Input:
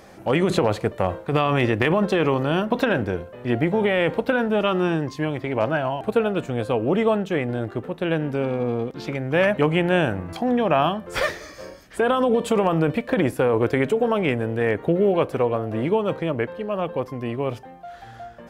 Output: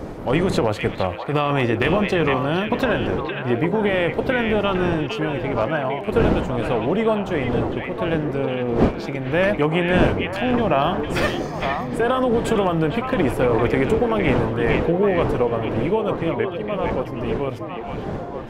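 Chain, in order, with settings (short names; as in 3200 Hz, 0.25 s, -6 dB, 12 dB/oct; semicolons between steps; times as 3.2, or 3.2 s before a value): wind noise 440 Hz -28 dBFS; delay with a stepping band-pass 0.458 s, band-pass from 2500 Hz, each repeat -1.4 oct, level -1 dB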